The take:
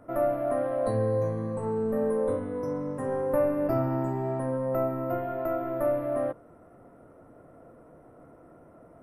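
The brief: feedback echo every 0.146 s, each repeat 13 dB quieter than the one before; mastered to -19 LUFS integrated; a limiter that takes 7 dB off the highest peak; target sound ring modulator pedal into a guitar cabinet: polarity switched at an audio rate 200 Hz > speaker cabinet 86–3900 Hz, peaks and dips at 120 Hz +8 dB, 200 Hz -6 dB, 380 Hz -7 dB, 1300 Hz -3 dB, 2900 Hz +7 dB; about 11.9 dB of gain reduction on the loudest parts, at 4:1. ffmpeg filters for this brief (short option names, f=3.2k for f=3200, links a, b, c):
-af "acompressor=threshold=-36dB:ratio=4,alimiter=level_in=9dB:limit=-24dB:level=0:latency=1,volume=-9dB,aecho=1:1:146|292|438:0.224|0.0493|0.0108,aeval=exprs='val(0)*sgn(sin(2*PI*200*n/s))':c=same,highpass=86,equalizer=f=120:t=q:w=4:g=8,equalizer=f=200:t=q:w=4:g=-6,equalizer=f=380:t=q:w=4:g=-7,equalizer=f=1.3k:t=q:w=4:g=-3,equalizer=f=2.9k:t=q:w=4:g=7,lowpass=f=3.9k:w=0.5412,lowpass=f=3.9k:w=1.3066,volume=22.5dB"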